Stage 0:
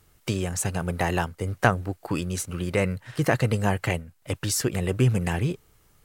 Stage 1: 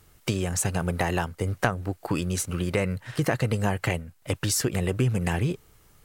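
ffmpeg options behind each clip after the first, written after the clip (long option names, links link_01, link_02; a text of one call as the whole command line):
ffmpeg -i in.wav -af "acompressor=threshold=-25dB:ratio=3,volume=3dB" out.wav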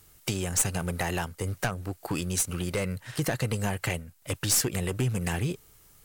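ffmpeg -i in.wav -af "highshelf=frequency=4100:gain=9.5,aeval=exprs='clip(val(0),-1,0.119)':channel_layout=same,volume=-3.5dB" out.wav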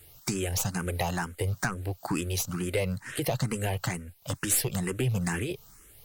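ffmpeg -i in.wav -filter_complex "[0:a]asplit=2[link_01][link_02];[link_02]acompressor=threshold=-35dB:ratio=6,volume=0.5dB[link_03];[link_01][link_03]amix=inputs=2:normalize=0,asplit=2[link_04][link_05];[link_05]afreqshift=2.2[link_06];[link_04][link_06]amix=inputs=2:normalize=1" out.wav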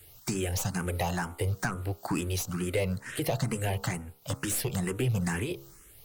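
ffmpeg -i in.wav -filter_complex "[0:a]bandreject=frequency=67.94:width_type=h:width=4,bandreject=frequency=135.88:width_type=h:width=4,bandreject=frequency=203.82:width_type=h:width=4,bandreject=frequency=271.76:width_type=h:width=4,bandreject=frequency=339.7:width_type=h:width=4,bandreject=frequency=407.64:width_type=h:width=4,bandreject=frequency=475.58:width_type=h:width=4,bandreject=frequency=543.52:width_type=h:width=4,bandreject=frequency=611.46:width_type=h:width=4,bandreject=frequency=679.4:width_type=h:width=4,bandreject=frequency=747.34:width_type=h:width=4,bandreject=frequency=815.28:width_type=h:width=4,bandreject=frequency=883.22:width_type=h:width=4,bandreject=frequency=951.16:width_type=h:width=4,bandreject=frequency=1019.1:width_type=h:width=4,bandreject=frequency=1087.04:width_type=h:width=4,bandreject=frequency=1154.98:width_type=h:width=4,bandreject=frequency=1222.92:width_type=h:width=4,bandreject=frequency=1290.86:width_type=h:width=4,bandreject=frequency=1358.8:width_type=h:width=4,bandreject=frequency=1426.74:width_type=h:width=4,acrossover=split=880|920[link_01][link_02][link_03];[link_03]asoftclip=type=tanh:threshold=-27.5dB[link_04];[link_01][link_02][link_04]amix=inputs=3:normalize=0" out.wav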